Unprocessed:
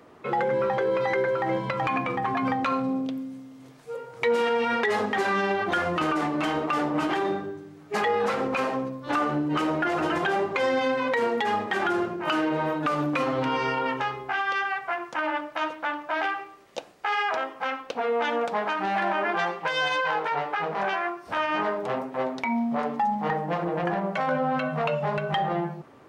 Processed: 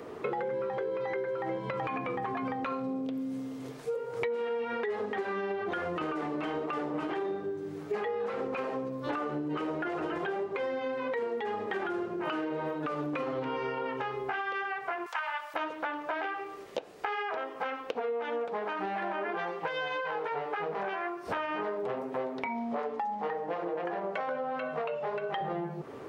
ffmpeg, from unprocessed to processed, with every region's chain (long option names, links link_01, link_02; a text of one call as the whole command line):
ffmpeg -i in.wav -filter_complex "[0:a]asettb=1/sr,asplit=3[link_01][link_02][link_03];[link_01]atrim=end=15.064[link_04];[link_02]atrim=start=15.06:end=15.54,asetpts=PTS-STARTPTS,afade=type=in:duration=0.004:curve=qsin,afade=type=out:start_time=0.476:duration=0.004:curve=qsin,highpass=frequency=820:width=0.5412,highpass=frequency=820:width=1.3066,highshelf=frequency=4600:gain=11.5[link_05];[link_03]atrim=start=15.536[link_06];[link_04][link_05]acrossfade=duration=0.004:curve1=hsin:curve2=qsin[link_07];[link_07][link_06]acrossfade=duration=0.004:curve1=qsin:curve2=hsin,asettb=1/sr,asplit=3[link_08][link_09][link_10];[link_08]atrim=end=22.464[link_11];[link_09]atrim=start=22.46:end=25.41,asetpts=PTS-STARTPTS,afade=type=in:duration=0.004:curve=qsin,afade=type=out:start_time=2.946:duration=0.004:curve=qsin,aeval=exprs='val(0)+0.00794*(sin(2*PI*60*n/s)+sin(2*PI*2*60*n/s)/2+sin(2*PI*3*60*n/s)/3+sin(2*PI*4*60*n/s)/4+sin(2*PI*5*60*n/s)/5)':channel_layout=same,highpass=330,lowpass=7600[link_12];[link_10]atrim=start=25.406[link_13];[link_11][link_12]acrossfade=duration=0.004:curve1=hsin:curve2=qsin[link_14];[link_14][link_13]acrossfade=duration=0.004:curve1=qsin:curve2=hsin,acrossover=split=3600[link_15][link_16];[link_16]acompressor=threshold=-53dB:ratio=4:attack=1:release=60[link_17];[link_15][link_17]amix=inputs=2:normalize=0,equalizer=frequency=430:width_type=o:width=0.48:gain=9,acompressor=threshold=-36dB:ratio=10,volume=5dB" out.wav